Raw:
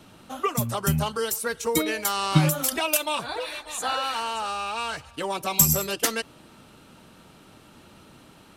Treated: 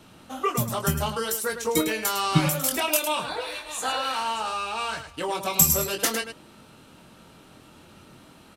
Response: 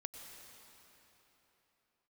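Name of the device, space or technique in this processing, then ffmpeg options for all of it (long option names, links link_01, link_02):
slapback doubling: -filter_complex "[0:a]asplit=3[link_01][link_02][link_03];[link_02]adelay=23,volume=-6dB[link_04];[link_03]adelay=105,volume=-9dB[link_05];[link_01][link_04][link_05]amix=inputs=3:normalize=0,volume=-1dB"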